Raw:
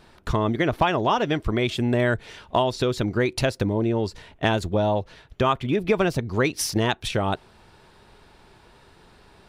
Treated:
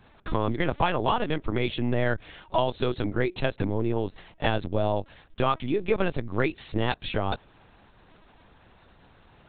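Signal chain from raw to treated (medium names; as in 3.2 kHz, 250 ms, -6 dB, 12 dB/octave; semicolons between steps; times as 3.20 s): LPC vocoder at 8 kHz pitch kept; trim -3 dB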